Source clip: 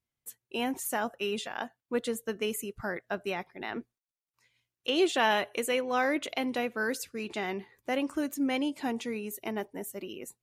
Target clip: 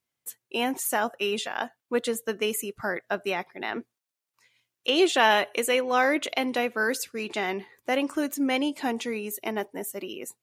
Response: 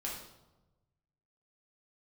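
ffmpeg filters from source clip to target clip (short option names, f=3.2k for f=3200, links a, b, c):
-af "highpass=f=270:p=1,volume=6dB"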